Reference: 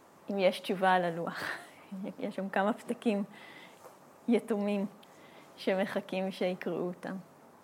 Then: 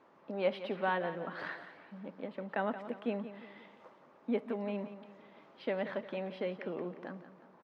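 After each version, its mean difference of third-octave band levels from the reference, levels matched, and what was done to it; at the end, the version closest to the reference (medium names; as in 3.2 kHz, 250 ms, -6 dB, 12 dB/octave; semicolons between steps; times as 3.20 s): 5.5 dB: high-pass 250 Hz 6 dB/octave; distance through air 260 m; band-stop 730 Hz, Q 15; on a send: feedback delay 176 ms, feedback 44%, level -12.5 dB; on the sum: trim -2.5 dB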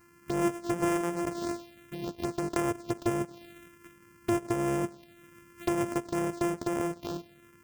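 9.0 dB: sorted samples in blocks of 128 samples; dynamic bell 400 Hz, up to +6 dB, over -45 dBFS, Q 2; compression 4:1, threshold -27 dBFS, peak gain reduction 8 dB; touch-sensitive phaser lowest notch 590 Hz, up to 4.1 kHz, full sweep at -29.5 dBFS; trim +2.5 dB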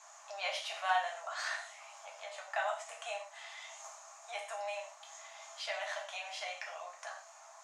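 15.5 dB: Chebyshev high-pass 640 Hz, order 6; gated-style reverb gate 150 ms falling, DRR -2 dB; in parallel at +1 dB: compression, threshold -47 dBFS, peak gain reduction 23.5 dB; on the sum: resonant low-pass 6.7 kHz, resonance Q 7.8; trim -6.5 dB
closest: first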